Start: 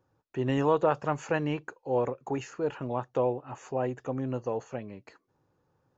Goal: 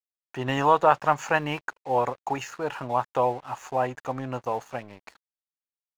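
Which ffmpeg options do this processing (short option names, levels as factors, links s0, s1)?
-af "lowshelf=f=590:t=q:w=1.5:g=-8,aeval=exprs='sgn(val(0))*max(abs(val(0))-0.00158,0)':c=same,volume=2.66"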